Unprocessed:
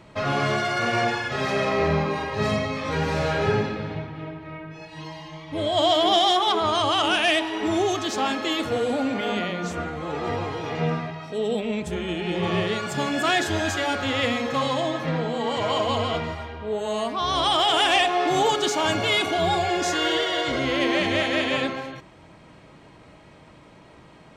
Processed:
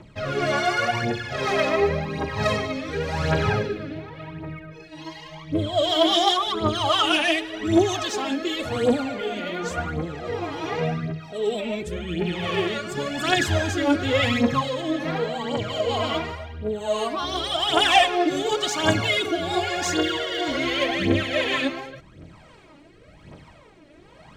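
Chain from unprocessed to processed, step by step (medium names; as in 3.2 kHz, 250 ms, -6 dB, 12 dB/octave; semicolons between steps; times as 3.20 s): rotary cabinet horn 1.1 Hz; phaser 0.9 Hz, delay 3.6 ms, feedback 66%; 13.37–14.62 s: bass shelf 330 Hz +7.5 dB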